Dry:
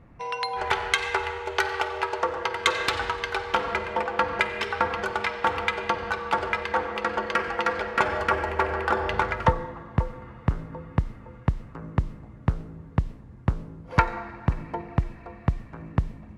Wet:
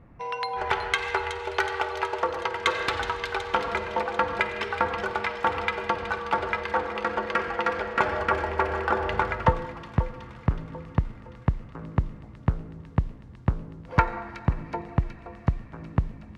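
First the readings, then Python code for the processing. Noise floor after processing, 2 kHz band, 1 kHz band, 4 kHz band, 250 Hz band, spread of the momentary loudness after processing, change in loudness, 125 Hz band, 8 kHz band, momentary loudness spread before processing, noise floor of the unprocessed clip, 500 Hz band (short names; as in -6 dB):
-46 dBFS, -1.5 dB, -0.5 dB, -3.0 dB, 0.0 dB, 5 LU, -1.0 dB, 0.0 dB, n/a, 6 LU, -46 dBFS, 0.0 dB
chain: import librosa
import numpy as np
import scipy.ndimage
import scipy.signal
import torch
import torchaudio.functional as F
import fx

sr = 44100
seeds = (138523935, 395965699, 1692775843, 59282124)

y = fx.high_shelf(x, sr, hz=3900.0, db=-8.5)
y = fx.echo_wet_highpass(y, sr, ms=371, feedback_pct=66, hz=3300.0, wet_db=-7)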